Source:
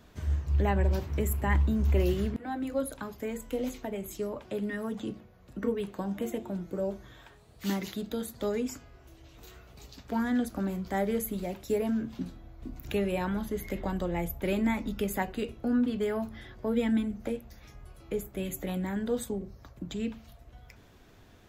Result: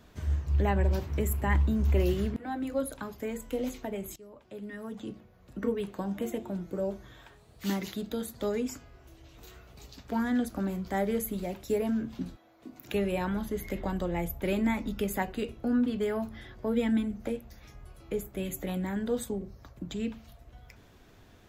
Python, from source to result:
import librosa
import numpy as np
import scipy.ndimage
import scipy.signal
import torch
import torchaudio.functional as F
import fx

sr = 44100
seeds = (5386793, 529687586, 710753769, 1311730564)

y = fx.highpass(x, sr, hz=fx.line((12.35, 510.0), (12.93, 180.0)), slope=12, at=(12.35, 12.93), fade=0.02)
y = fx.edit(y, sr, fx.fade_in_from(start_s=4.16, length_s=1.45, floor_db=-20.0), tone=tone)